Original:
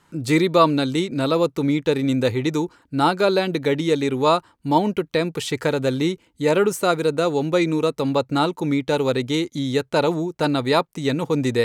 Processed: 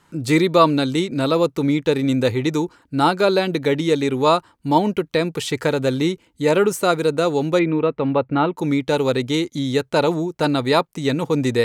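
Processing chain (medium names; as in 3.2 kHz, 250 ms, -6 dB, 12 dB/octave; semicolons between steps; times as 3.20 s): 7.59–8.57 s: low-pass 2.8 kHz 24 dB/octave; trim +1.5 dB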